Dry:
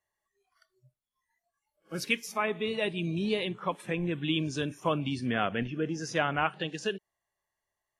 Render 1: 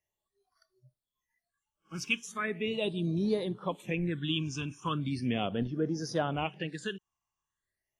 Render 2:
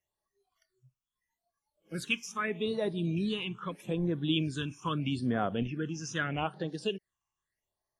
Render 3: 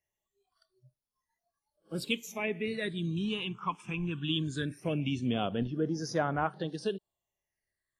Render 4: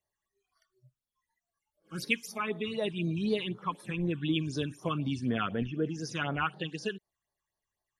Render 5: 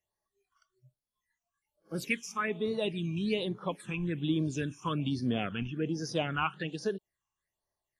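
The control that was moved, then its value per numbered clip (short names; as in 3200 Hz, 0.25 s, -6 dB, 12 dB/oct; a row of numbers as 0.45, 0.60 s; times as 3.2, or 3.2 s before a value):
phaser, rate: 0.38, 0.79, 0.2, 4, 1.2 Hz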